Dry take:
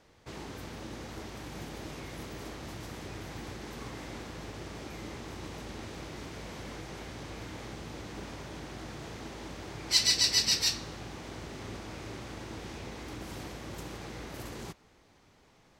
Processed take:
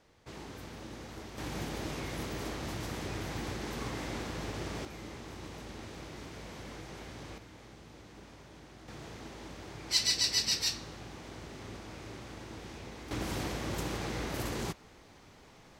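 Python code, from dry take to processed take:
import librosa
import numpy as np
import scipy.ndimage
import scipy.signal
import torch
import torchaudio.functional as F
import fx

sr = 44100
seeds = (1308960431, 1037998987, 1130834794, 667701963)

y = fx.gain(x, sr, db=fx.steps((0.0, -3.0), (1.38, 4.0), (4.85, -3.0), (7.38, -10.0), (8.88, -3.5), (13.11, 6.0)))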